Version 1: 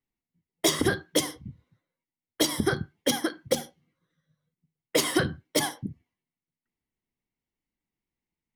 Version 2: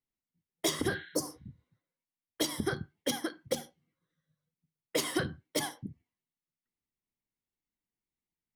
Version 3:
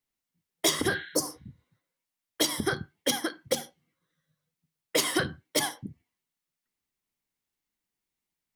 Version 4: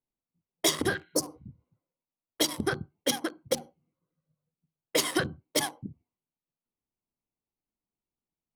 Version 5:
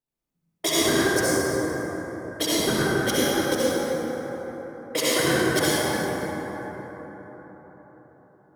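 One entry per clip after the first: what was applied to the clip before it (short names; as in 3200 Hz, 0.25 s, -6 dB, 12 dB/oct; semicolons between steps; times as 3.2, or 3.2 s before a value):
spectral repair 0.93–1.54, 1400–4200 Hz both; gain -7 dB
low shelf 490 Hz -6 dB; gain +7 dB
Wiener smoothing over 25 samples
reverb RT60 4.9 s, pre-delay 56 ms, DRR -10 dB; gain -1.5 dB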